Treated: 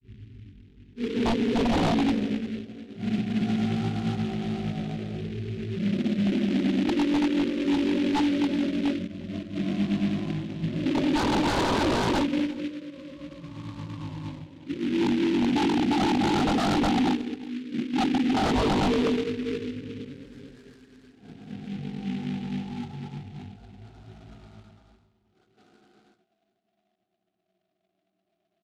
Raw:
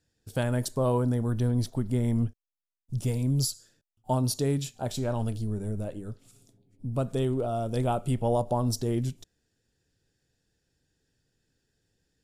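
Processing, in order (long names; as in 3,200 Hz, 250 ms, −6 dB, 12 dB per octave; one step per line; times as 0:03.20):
rippled gain that drifts along the octave scale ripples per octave 1.1, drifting −0.51 Hz, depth 14 dB
source passing by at 0:05.37, 12 m/s, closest 16 metres
four-pole ladder band-pass 880 Hz, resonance 35%
parametric band 1,300 Hz +6.5 dB 2.6 octaves
extreme stretch with random phases 4.5×, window 0.10 s, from 0:06.71
in parallel at −10 dB: bit reduction 6 bits
on the sum: granular cloud, pitch spread up and down by 0 semitones
sine wavefolder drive 15 dB, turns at −23 dBFS
high-frequency loss of the air 300 metres
on a send: single-tap delay 153 ms −23 dB
on the sum: wrong playback speed 78 rpm record played at 33 rpm
short delay modulated by noise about 2,400 Hz, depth 0.083 ms
level +5 dB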